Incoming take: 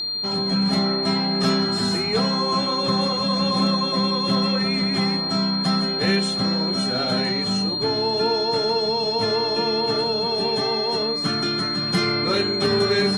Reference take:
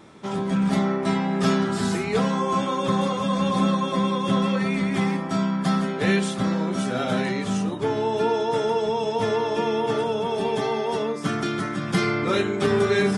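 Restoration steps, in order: clip repair -11 dBFS; notch 4200 Hz, Q 30

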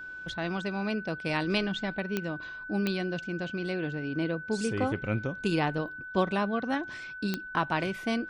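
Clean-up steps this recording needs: de-click; notch 1500 Hz, Q 30

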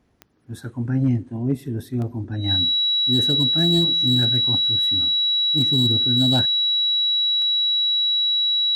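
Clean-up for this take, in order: clip repair -11.5 dBFS; de-click; notch 3900 Hz, Q 30

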